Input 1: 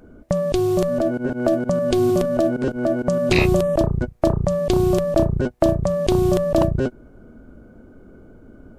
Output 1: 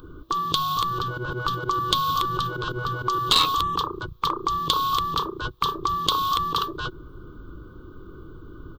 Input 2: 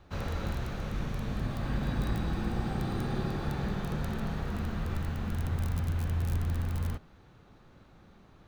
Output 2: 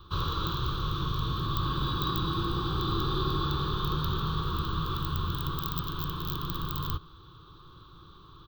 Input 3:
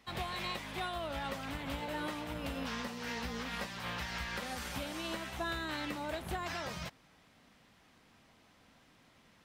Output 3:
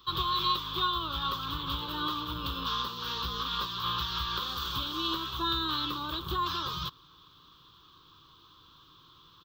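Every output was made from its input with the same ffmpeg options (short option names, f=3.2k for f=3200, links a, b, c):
-af "afftfilt=real='re*lt(hypot(re,im),0.251)':imag='im*lt(hypot(re,im),0.251)':win_size=1024:overlap=0.75,firequalizer=gain_entry='entry(160,0);entry(220,-16);entry(330,2);entry(690,-22);entry(1100,11);entry(2000,-20);entry(3400,12);entry(5100,-2);entry(11000,-26);entry(15000,11)':delay=0.05:min_phase=1,aeval=exprs='clip(val(0),-1,0.1)':c=same,volume=5.5dB"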